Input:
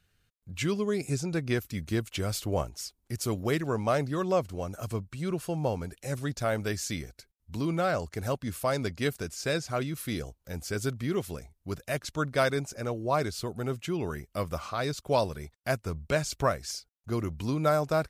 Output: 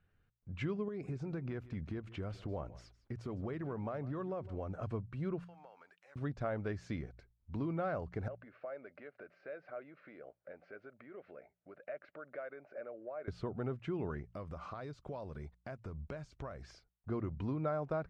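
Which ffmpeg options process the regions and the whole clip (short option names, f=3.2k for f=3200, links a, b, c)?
-filter_complex "[0:a]asettb=1/sr,asplit=3[a][b][c];[a]atrim=end=0.884[d];[b]atrim=start=0.88:end=4.78,asetpts=PTS-STARTPTS,afade=t=in:d=0.004:c=qsin,afade=t=out:st=3.896:d=0.004:c=qsin,acompressor=threshold=-32dB:ratio=10:attack=3.2:release=140:knee=1:detection=peak,aecho=1:1:157:0.119,atrim=end_sample=171990[e];[c]atrim=start=4.776[f];[d][e]acrossfade=d=0.004:c1=hsin:c2=qsin[g];[g][f]acrossfade=d=0.004:c1=qsin:c2=hsin,asettb=1/sr,asplit=3[h][i][j];[h]atrim=end=5.444[k];[i]atrim=start=5.44:end=6.16,asetpts=PTS-STARTPTS,afade=t=in:d=0.004:c=qsin,afade=t=out:st=0.716:d=0.004:c=qsin,highpass=1.2k,acompressor=threshold=-51dB:ratio=5:attack=3.2:release=140:knee=1:detection=peak[l];[j]atrim=start=6.156[m];[k][l]acrossfade=d=0.004:c1=hsin:c2=qsin[n];[n][m]acrossfade=d=0.004:c1=qsin:c2=hsin,asettb=1/sr,asplit=3[o][p][q];[o]atrim=end=8.284[r];[p]atrim=start=8.28:end=13.28,asetpts=PTS-STARTPTS,afade=t=in:d=0.004:c=qsin,afade=t=out:st=4.996:d=0.004:c=qsin,acompressor=threshold=-40dB:ratio=12:attack=3.2:release=140:knee=1:detection=peak,highpass=410,equalizer=f=590:t=q:w=4:g=10,equalizer=f=960:t=q:w=4:g=-9,equalizer=f=1.5k:t=q:w=4:g=5,equalizer=f=2.2k:t=q:w=4:g=4,equalizer=f=3.4k:t=q:w=4:g=-9,lowpass=f=3.6k:w=0.5412,lowpass=f=3.6k:w=1.3066[s];[q]atrim=start=13.276[t];[r][s]acrossfade=d=0.004:c1=hsin:c2=qsin[u];[u][t]acrossfade=d=0.004:c1=qsin:c2=hsin,asettb=1/sr,asplit=3[v][w][x];[v]atrim=end=14.284[y];[w]atrim=start=14.28:end=16.63,asetpts=PTS-STARTPTS,afade=t=in:d=0.004:c=qsin,afade=t=out:st=2.346:d=0.004:c=qsin,bass=f=250:g=1,treble=f=4k:g=9,acompressor=threshold=-37dB:ratio=12:attack=3.2:release=140:knee=1:detection=peak[z];[x]atrim=start=16.626[aa];[y][z]acrossfade=d=0.004:c1=hsin:c2=qsin[ab];[ab][aa]acrossfade=d=0.004:c1=qsin:c2=hsin,lowpass=1.6k,bandreject=f=58.12:t=h:w=4,bandreject=f=116.24:t=h:w=4,bandreject=f=174.36:t=h:w=4,acompressor=threshold=-33dB:ratio=3,volume=-2dB"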